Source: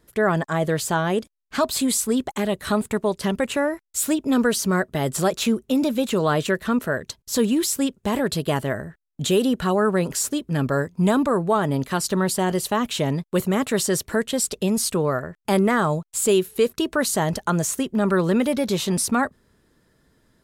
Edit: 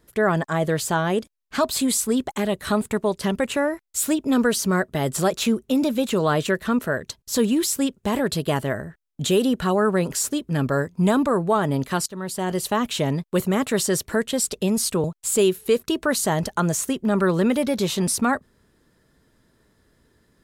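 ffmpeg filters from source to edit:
ffmpeg -i in.wav -filter_complex "[0:a]asplit=3[link_01][link_02][link_03];[link_01]atrim=end=12.06,asetpts=PTS-STARTPTS,afade=type=out:start_time=12.056:duration=0.004:curve=hsin:silence=0.112202[link_04];[link_02]atrim=start=12.06:end=15.042,asetpts=PTS-STARTPTS,afade=type=in:duration=0.62:silence=0.112202[link_05];[link_03]atrim=start=15.938[link_06];[link_04][link_05]concat=n=2:v=0:a=1[link_07];[link_07][link_06]acrossfade=duration=0.004:curve1=hsin:curve2=hsin" out.wav

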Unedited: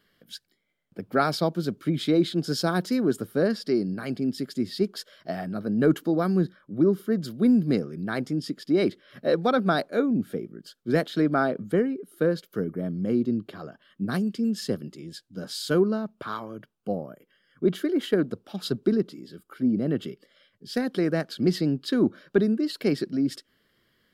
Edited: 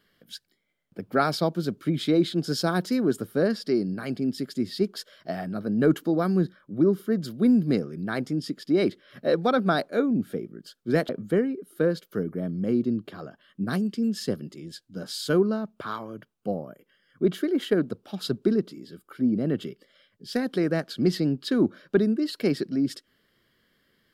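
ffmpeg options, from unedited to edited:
ffmpeg -i in.wav -filter_complex "[0:a]asplit=2[link_01][link_02];[link_01]atrim=end=11.092[link_03];[link_02]atrim=start=11.498[link_04];[link_03][link_04]acrossfade=duration=0.004:curve1=hsin:curve2=hsin" out.wav

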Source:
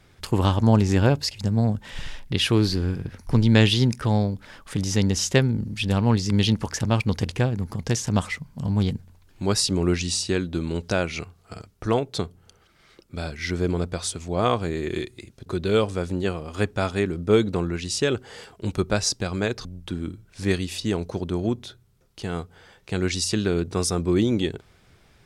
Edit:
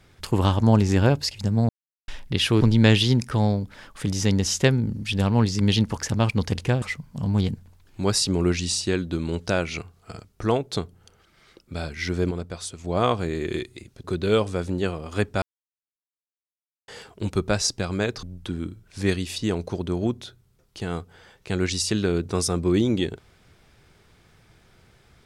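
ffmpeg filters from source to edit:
ffmpeg -i in.wav -filter_complex "[0:a]asplit=9[link_01][link_02][link_03][link_04][link_05][link_06][link_07][link_08][link_09];[link_01]atrim=end=1.69,asetpts=PTS-STARTPTS,afade=type=out:start_time=1.686:duration=0.004:curve=hsin[link_10];[link_02]atrim=start=1.69:end=2.08,asetpts=PTS-STARTPTS,volume=0[link_11];[link_03]atrim=start=2.08:end=2.612,asetpts=PTS-STARTPTS,afade=type=in:duration=0.004:curve=hsin[link_12];[link_04]atrim=start=3.318:end=7.532[link_13];[link_05]atrim=start=8.238:end=13.732[link_14];[link_06]atrim=start=13.728:end=14.262,asetpts=PTS-STARTPTS,volume=-5.5dB[link_15];[link_07]atrim=start=14.258:end=16.84,asetpts=PTS-STARTPTS,afade=type=out:start_time=2.578:duration=0.004:curve=hsin[link_16];[link_08]atrim=start=16.84:end=18.3,asetpts=PTS-STARTPTS,volume=0[link_17];[link_09]atrim=start=18.3,asetpts=PTS-STARTPTS,afade=type=in:duration=0.004:curve=hsin[link_18];[link_10][link_11][link_12]concat=n=3:v=0:a=1[link_19];[link_19][link_13]acrossfade=duration=0.004:curve1=hsin:curve2=hsin[link_20];[link_20][link_14]acrossfade=duration=0.004:curve1=hsin:curve2=hsin[link_21];[link_21][link_15]acrossfade=duration=0.004:curve1=hsin:curve2=hsin[link_22];[link_16][link_17][link_18]concat=n=3:v=0:a=1[link_23];[link_22][link_23]acrossfade=duration=0.004:curve1=hsin:curve2=hsin" out.wav

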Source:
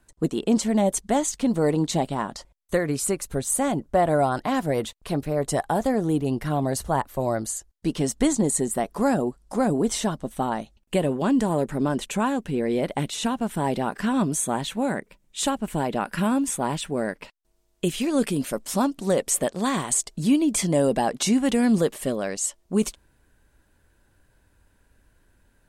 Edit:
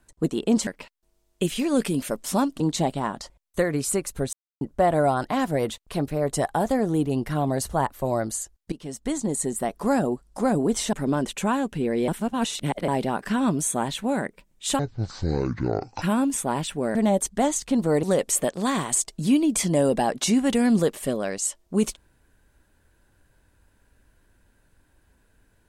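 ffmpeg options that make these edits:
ffmpeg -i in.wav -filter_complex "[0:a]asplit=13[link_01][link_02][link_03][link_04][link_05][link_06][link_07][link_08][link_09][link_10][link_11][link_12][link_13];[link_01]atrim=end=0.672[link_14];[link_02]atrim=start=17.088:end=19.022[link_15];[link_03]atrim=start=1.748:end=3.48,asetpts=PTS-STARTPTS,afade=type=out:start_time=1.728:duration=0.004:curve=hsin[link_16];[link_04]atrim=start=3.48:end=3.76,asetpts=PTS-STARTPTS,volume=0[link_17];[link_05]atrim=start=3.76:end=7.87,asetpts=PTS-STARTPTS,afade=type=in:duration=0.004:curve=hsin,afade=type=out:start_time=4.106:duration=0.004:curve=hsin:silence=0.149624[link_18];[link_06]atrim=start=7.87:end=10.082,asetpts=PTS-STARTPTS,afade=type=in:duration=1.53:curve=qsin:silence=0.149624[link_19];[link_07]atrim=start=11.658:end=12.812[link_20];[link_08]atrim=start=12.808:end=13.612,asetpts=PTS-STARTPTS,areverse[link_21];[link_09]atrim=start=13.608:end=15.524[link_22];[link_10]atrim=start=15.52:end=16.16,asetpts=PTS-STARTPTS,asetrate=22932,aresample=44100[link_23];[link_11]atrim=start=16.156:end=17.092[link_24];[link_12]atrim=start=0.668:end=1.752[link_25];[link_13]atrim=start=19.018[link_26];[link_14][link_15]acrossfade=duration=0.004:curve1=hsin:curve2=hsin[link_27];[link_16][link_17][link_18][link_19]concat=n=4:v=0:a=1[link_28];[link_27][link_28]acrossfade=duration=0.004:curve1=hsin:curve2=hsin[link_29];[link_29][link_20]acrossfade=duration=0.004:curve1=hsin:curve2=hsin[link_30];[link_30][link_21]acrossfade=duration=0.004:curve1=hsin:curve2=hsin[link_31];[link_31][link_22]acrossfade=duration=0.004:curve1=hsin:curve2=hsin[link_32];[link_32][link_23]acrossfade=duration=0.004:curve1=hsin:curve2=hsin[link_33];[link_33][link_24]acrossfade=duration=0.004:curve1=hsin:curve2=hsin[link_34];[link_34][link_25]acrossfade=duration=0.004:curve1=hsin:curve2=hsin[link_35];[link_35][link_26]acrossfade=duration=0.004:curve1=hsin:curve2=hsin" out.wav

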